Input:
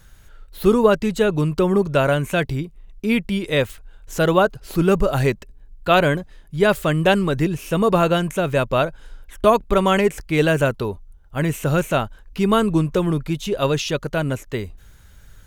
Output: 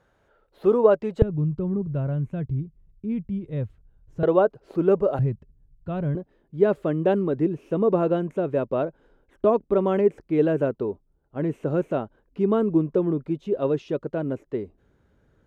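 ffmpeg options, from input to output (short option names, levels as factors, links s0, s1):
-af "asetnsamples=n=441:p=0,asendcmd='1.22 bandpass f 110;4.23 bandpass f 460;5.19 bandpass f 110;6.15 bandpass f 350',bandpass=f=560:t=q:w=1.3:csg=0"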